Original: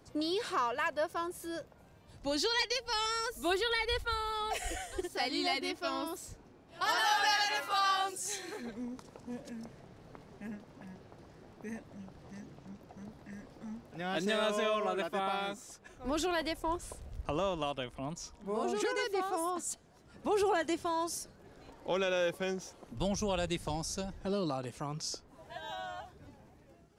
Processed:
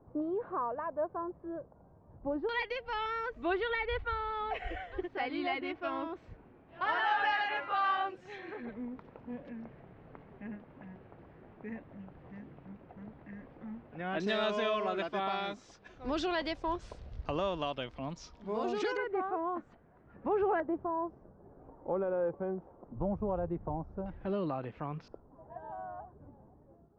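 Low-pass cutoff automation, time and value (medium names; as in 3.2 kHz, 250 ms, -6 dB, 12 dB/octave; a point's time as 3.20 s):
low-pass 24 dB/octave
1.1 kHz
from 2.49 s 2.6 kHz
from 14.20 s 4.9 kHz
from 18.97 s 1.9 kHz
from 20.60 s 1.1 kHz
from 24.06 s 2.6 kHz
from 25.08 s 1.1 kHz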